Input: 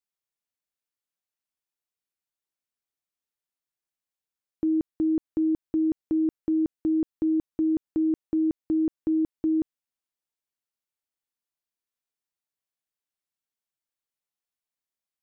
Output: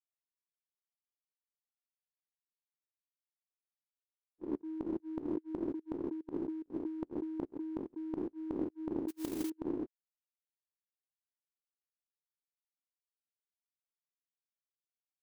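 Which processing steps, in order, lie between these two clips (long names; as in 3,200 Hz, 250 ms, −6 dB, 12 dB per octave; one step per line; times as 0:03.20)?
every bin's largest magnitude spread in time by 480 ms
fake sidechain pumping 145 BPM, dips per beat 1, −13 dB, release 108 ms
0:09.08–0:09.50: noise that follows the level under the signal 17 dB
noise gate −19 dBFS, range −58 dB
low-shelf EQ 340 Hz −7.5 dB
level +15 dB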